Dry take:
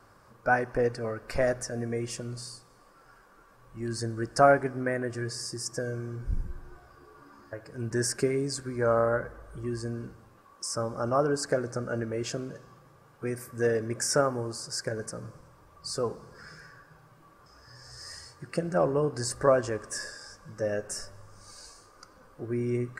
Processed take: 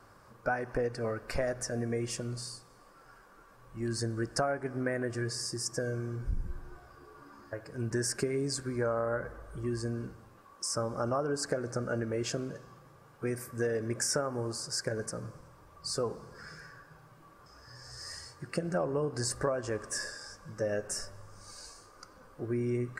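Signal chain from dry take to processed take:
downward compressor 10 to 1, threshold −27 dBFS, peak gain reduction 13.5 dB

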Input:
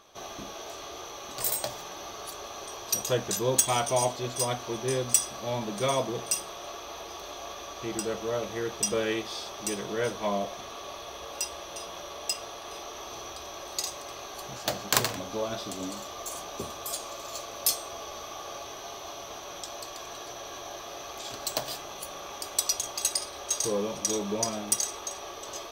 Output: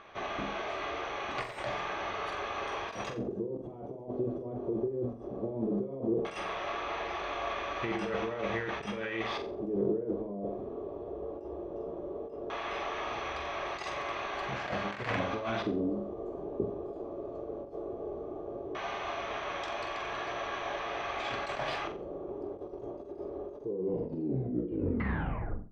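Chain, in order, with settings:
turntable brake at the end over 2.06 s
compressor whose output falls as the input rises −35 dBFS, ratio −1
auto-filter low-pass square 0.16 Hz 390–2,100 Hz
flutter between parallel walls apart 7.6 metres, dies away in 0.35 s
every ending faded ahead of time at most 140 dB per second

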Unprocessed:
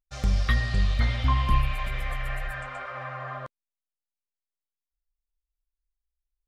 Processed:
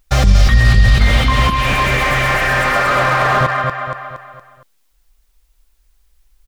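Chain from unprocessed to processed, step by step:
compressor whose output falls as the input rises −27 dBFS, ratio −1
0:00.94–0:03.41: high-pass filter 320 Hz 6 dB per octave
repeating echo 233 ms, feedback 42%, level −6 dB
dynamic equaliser 800 Hz, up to −5 dB, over −45 dBFS, Q 0.78
boost into a limiter +26 dB
slew-rate limiting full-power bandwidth 370 Hz
level −1 dB

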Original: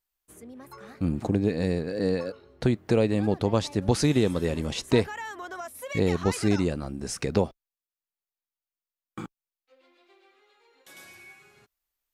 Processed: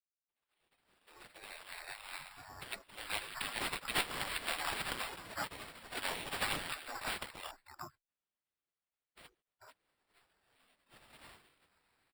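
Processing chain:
fade in at the beginning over 3.51 s
0:05.56–0:06.01: comb filter 2.7 ms, depth 83%
three-band delay without the direct sound highs, lows, mids 70/440 ms, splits 170/960 Hz
flanger 0.26 Hz, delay 1.4 ms, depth 8.5 ms, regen +32%
dynamic equaliser 1,500 Hz, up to +6 dB, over −49 dBFS, Q 0.97
gate on every frequency bin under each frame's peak −30 dB weak
0:07.42–0:09.20: frequency shifter +13 Hz
decimation without filtering 7×
level +12 dB

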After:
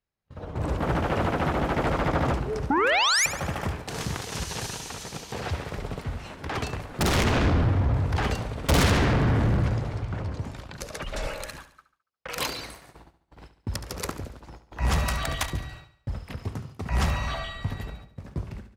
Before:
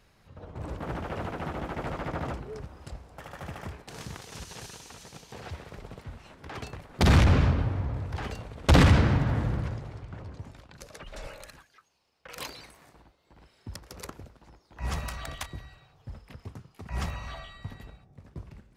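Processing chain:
sound drawn into the spectrogram rise, 0:02.70–0:03.26, 260–2,500 Hz −19 dBFS
in parallel at −7 dB: sine wavefolder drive 15 dB, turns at −9.5 dBFS
on the sum: automatic gain control gain up to 4.5 dB
noise gate −36 dBFS, range −32 dB
repeating echo 71 ms, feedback 48%, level −13 dB
level −8.5 dB

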